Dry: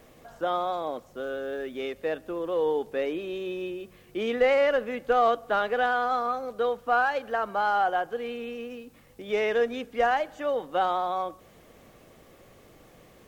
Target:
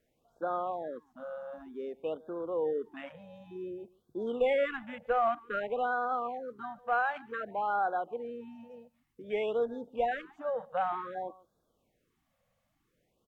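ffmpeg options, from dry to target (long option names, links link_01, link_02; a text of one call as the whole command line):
ffmpeg -i in.wav -af "afwtdn=0.0141,aecho=1:1:145:0.0708,afftfilt=real='re*(1-between(b*sr/1024,320*pow(2400/320,0.5+0.5*sin(2*PI*0.54*pts/sr))/1.41,320*pow(2400/320,0.5+0.5*sin(2*PI*0.54*pts/sr))*1.41))':imag='im*(1-between(b*sr/1024,320*pow(2400/320,0.5+0.5*sin(2*PI*0.54*pts/sr))/1.41,320*pow(2400/320,0.5+0.5*sin(2*PI*0.54*pts/sr))*1.41))':win_size=1024:overlap=0.75,volume=-5.5dB" out.wav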